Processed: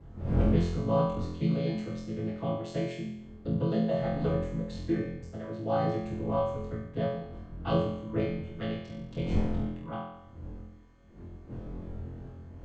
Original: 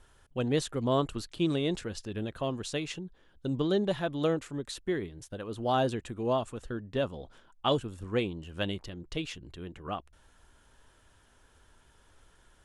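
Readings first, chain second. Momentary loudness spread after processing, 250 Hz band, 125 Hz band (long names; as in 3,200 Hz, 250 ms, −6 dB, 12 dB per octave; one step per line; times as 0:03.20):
16 LU, +2.0 dB, +5.5 dB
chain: channel vocoder with a chord as carrier major triad, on A2
wind on the microphone 180 Hz −42 dBFS
on a send: flutter between parallel walls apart 4 metres, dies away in 0.8 s
on the sum: reverb whose tail is shaped and stops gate 90 ms falling, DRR 11 dB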